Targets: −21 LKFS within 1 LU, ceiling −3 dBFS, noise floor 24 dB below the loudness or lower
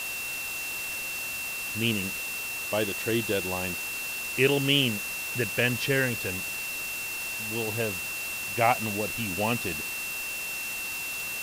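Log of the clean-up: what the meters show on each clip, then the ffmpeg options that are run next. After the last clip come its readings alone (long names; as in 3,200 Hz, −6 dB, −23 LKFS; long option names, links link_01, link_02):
interfering tone 2,700 Hz; level of the tone −33 dBFS; background noise floor −34 dBFS; target noise floor −52 dBFS; integrated loudness −28.0 LKFS; sample peak −9.0 dBFS; target loudness −21.0 LKFS
→ -af "bandreject=frequency=2700:width=30"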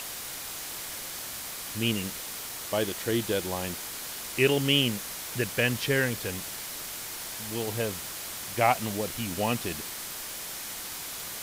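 interfering tone none found; background noise floor −38 dBFS; target noise floor −54 dBFS
→ -af "afftdn=noise_reduction=16:noise_floor=-38"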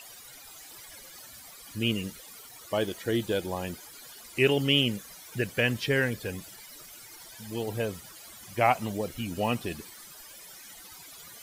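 background noise floor −49 dBFS; target noise floor −53 dBFS
→ -af "afftdn=noise_reduction=6:noise_floor=-49"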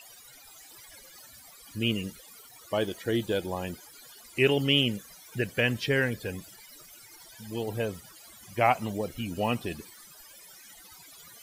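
background noise floor −52 dBFS; target noise floor −53 dBFS
→ -af "afftdn=noise_reduction=6:noise_floor=-52"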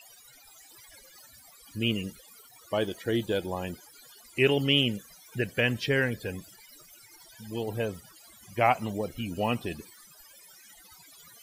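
background noise floor −55 dBFS; integrated loudness −29.0 LKFS; sample peak −10.0 dBFS; target loudness −21.0 LKFS
→ -af "volume=8dB,alimiter=limit=-3dB:level=0:latency=1"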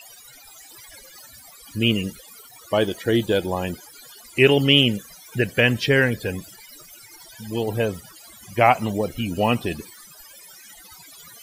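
integrated loudness −21.0 LKFS; sample peak −3.0 dBFS; background noise floor −47 dBFS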